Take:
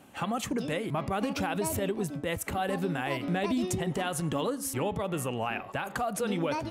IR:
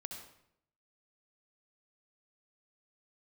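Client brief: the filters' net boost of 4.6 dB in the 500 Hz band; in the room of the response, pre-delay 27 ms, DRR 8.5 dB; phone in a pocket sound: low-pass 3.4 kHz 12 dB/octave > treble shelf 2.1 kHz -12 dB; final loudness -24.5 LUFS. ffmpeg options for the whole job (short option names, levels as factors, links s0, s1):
-filter_complex "[0:a]equalizer=f=500:t=o:g=6.5,asplit=2[s0][s1];[1:a]atrim=start_sample=2205,adelay=27[s2];[s1][s2]afir=irnorm=-1:irlink=0,volume=0.501[s3];[s0][s3]amix=inputs=2:normalize=0,lowpass=3400,highshelf=f=2100:g=-12,volume=1.68"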